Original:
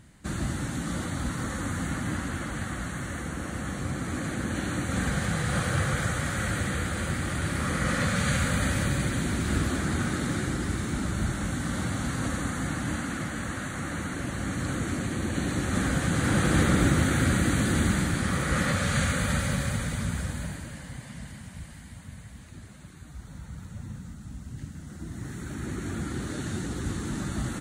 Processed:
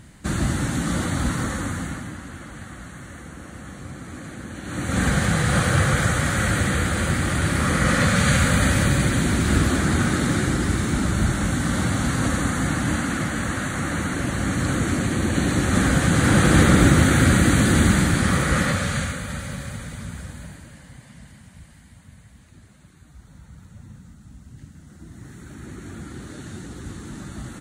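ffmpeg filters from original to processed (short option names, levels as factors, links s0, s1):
-af "volume=10,afade=t=out:st=1.3:d=0.83:silence=0.237137,afade=t=in:st=4.63:d=0.42:silence=0.237137,afade=t=out:st=18.32:d=0.89:silence=0.266073"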